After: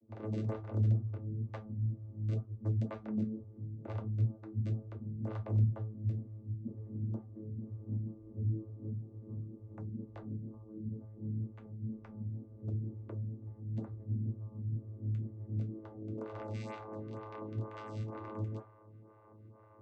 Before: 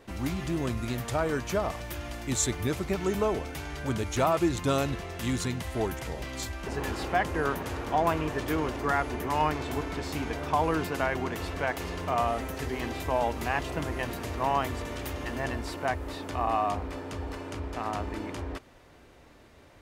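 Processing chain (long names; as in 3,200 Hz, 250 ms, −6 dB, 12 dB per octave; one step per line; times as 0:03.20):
stylus tracing distortion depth 0.057 ms
high-shelf EQ 4,700 Hz +10 dB
downward compressor 6 to 1, threshold −32 dBFS, peak gain reduction 15 dB
low-pass filter sweep 190 Hz → 1,100 Hz, 0:15.45–0:17.06
wrap-around overflow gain 27.5 dB
0:10.63–0:12.23: notch comb filter 280 Hz
channel vocoder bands 16, saw 108 Hz
convolution reverb, pre-delay 3 ms, DRR 1.5 dB
phaser with staggered stages 2.1 Hz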